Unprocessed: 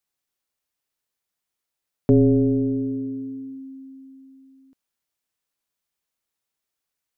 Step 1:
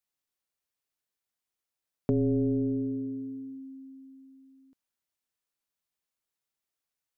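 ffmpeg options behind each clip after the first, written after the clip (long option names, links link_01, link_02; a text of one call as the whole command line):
ffmpeg -i in.wav -af "acompressor=threshold=-18dB:ratio=6,volume=-5.5dB" out.wav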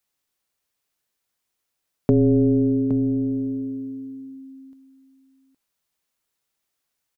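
ffmpeg -i in.wav -af "aecho=1:1:816:0.282,volume=9dB" out.wav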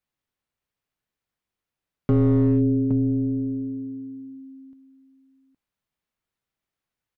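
ffmpeg -i in.wav -af "asoftclip=type=hard:threshold=-15.5dB,bass=frequency=250:gain=7,treble=frequency=4000:gain=-10,volume=-4dB" out.wav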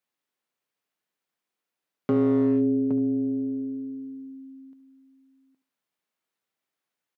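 ffmpeg -i in.wav -af "highpass=250,aecho=1:1:72|144|216:0.188|0.0452|0.0108,volume=1dB" out.wav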